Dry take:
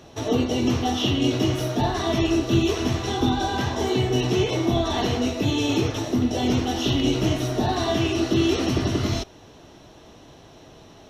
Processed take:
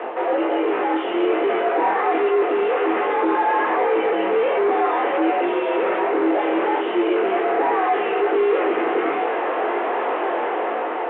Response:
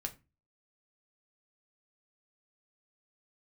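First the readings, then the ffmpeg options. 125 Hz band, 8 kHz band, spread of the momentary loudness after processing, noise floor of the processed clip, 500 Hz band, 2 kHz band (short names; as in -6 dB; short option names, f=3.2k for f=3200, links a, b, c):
under -30 dB, under -40 dB, 4 LU, -24 dBFS, +7.5 dB, +7.5 dB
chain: -filter_complex "[0:a]areverse,acompressor=threshold=-36dB:ratio=4,areverse,flanger=delay=18:depth=4.9:speed=1.3,dynaudnorm=f=350:g=5:m=8.5dB,asplit=2[a][b];[b]highpass=f=720:p=1,volume=32dB,asoftclip=type=tanh:threshold=-20dB[c];[a][c]amix=inputs=2:normalize=0,lowpass=f=1.5k:p=1,volume=-6dB,asplit=2[d][e];[1:a]atrim=start_sample=2205,lowshelf=f=350:g=3.5[f];[e][f]afir=irnorm=-1:irlink=0,volume=1.5dB[g];[d][g]amix=inputs=2:normalize=0,highpass=f=240:t=q:w=0.5412,highpass=f=240:t=q:w=1.307,lowpass=f=2.4k:t=q:w=0.5176,lowpass=f=2.4k:t=q:w=0.7071,lowpass=f=2.4k:t=q:w=1.932,afreqshift=75,volume=2dB" -ar 8000 -c:a pcm_mulaw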